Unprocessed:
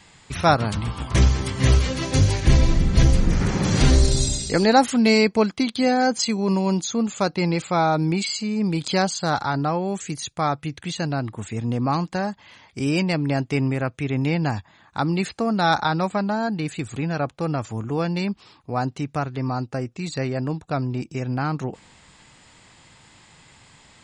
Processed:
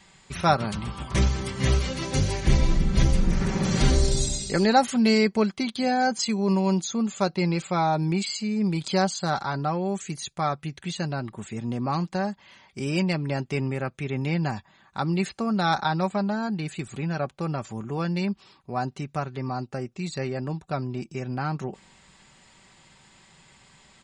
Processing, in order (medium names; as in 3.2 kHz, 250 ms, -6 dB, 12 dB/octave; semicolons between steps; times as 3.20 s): comb 5.2 ms, depth 44%; trim -4.5 dB